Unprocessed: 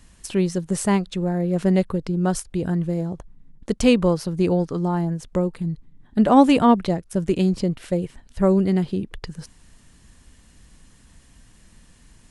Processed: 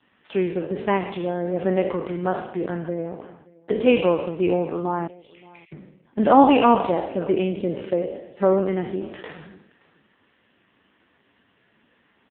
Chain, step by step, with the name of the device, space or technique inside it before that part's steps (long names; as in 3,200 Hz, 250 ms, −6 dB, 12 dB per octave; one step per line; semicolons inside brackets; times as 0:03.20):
peak hold with a decay on every bin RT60 0.86 s
0:02.38–0:04.12: noise gate with hold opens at −30 dBFS
0:05.07–0:05.72: Butterworth high-pass 2,100 Hz 72 dB per octave
satellite phone (band-pass filter 330–3,400 Hz; single-tap delay 575 ms −23 dB; level +2 dB; AMR narrowband 5.15 kbit/s 8,000 Hz)